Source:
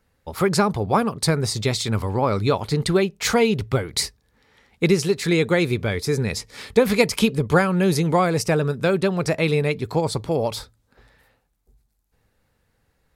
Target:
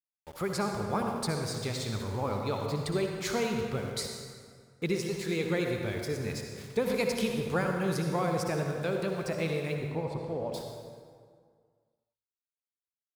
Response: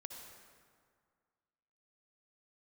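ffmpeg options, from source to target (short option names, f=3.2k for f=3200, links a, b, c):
-filter_complex "[0:a]aeval=exprs='val(0)*gte(abs(val(0)),0.02)':c=same,asettb=1/sr,asplit=3[a][b][c];[a]atrim=end=9.754[d];[b]atrim=start=9.75:end=10.54,asetpts=PTS-STARTPTS,afade=t=in:d=0.004:c=qsin,afade=t=out:st=0.786:d=0.004:c=qsin,lowpass=f=1.1k:p=1[e];[c]atrim=start=10.536[f];[d][e]acrossfade=d=0.004:c1=hsin:c2=qsin[g];[g][f]acrossfade=d=0.004:c1=qsin:c2=hsin[h];[1:a]atrim=start_sample=2205[i];[h][i]afir=irnorm=-1:irlink=0,volume=-7dB"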